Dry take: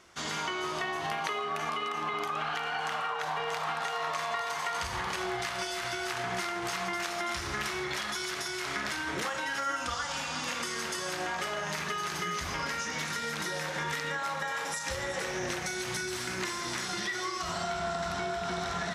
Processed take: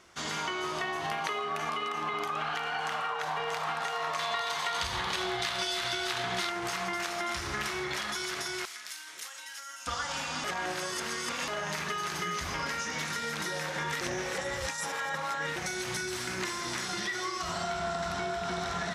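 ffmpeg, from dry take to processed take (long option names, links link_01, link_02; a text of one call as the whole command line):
ffmpeg -i in.wav -filter_complex "[0:a]asettb=1/sr,asplit=3[link_01][link_02][link_03];[link_01]atrim=end=4.194[link_04];[link_02]atrim=start=4.19:end=6.5,asetpts=PTS-STARTPTS,afade=type=in:duration=0.004:curve=qsin,afade=type=out:start_time=2.306:duration=0.004:curve=qsin,equalizer=frequency=3700:width_type=o:width=0.6:gain=9[link_05];[link_03]atrim=start=6.496[link_06];[link_04][link_05]acrossfade=duration=0.004:curve1=hsin:curve2=qsin[link_07];[link_07][link_06]acrossfade=duration=0.004:curve1=qsin:curve2=hsin,asettb=1/sr,asplit=3[link_08][link_09][link_10];[link_08]atrim=end=8.654[link_11];[link_09]atrim=start=8.65:end=9.87,asetpts=PTS-STARTPTS,afade=type=in:duration=0.004:curve=qsin,afade=type=out:start_time=1.216:duration=0.004:curve=qsin,aderivative[link_12];[link_10]atrim=start=9.866[link_13];[link_11][link_12]acrossfade=duration=0.004:curve1=hsin:curve2=qsin[link_14];[link_14][link_13]acrossfade=duration=0.004:curve1=qsin:curve2=hsin,asplit=5[link_15][link_16][link_17][link_18][link_19];[link_15]atrim=end=10.442[link_20];[link_16]atrim=start=10.438:end=11.482,asetpts=PTS-STARTPTS,areverse[link_21];[link_17]atrim=start=11.478:end=14.012[link_22];[link_18]atrim=start=14.008:end=15.562,asetpts=PTS-STARTPTS,areverse[link_23];[link_19]atrim=start=15.558[link_24];[link_20][link_21]acrossfade=duration=0.004:curve1=hsin:curve2=hsin[link_25];[link_25][link_22]acrossfade=duration=0.004:curve1=hsin:curve2=hsin[link_26];[link_26][link_23]acrossfade=duration=0.004:curve1=hsin:curve2=hsin[link_27];[link_27][link_24]acrossfade=duration=0.004:curve1=hsin:curve2=hsin" out.wav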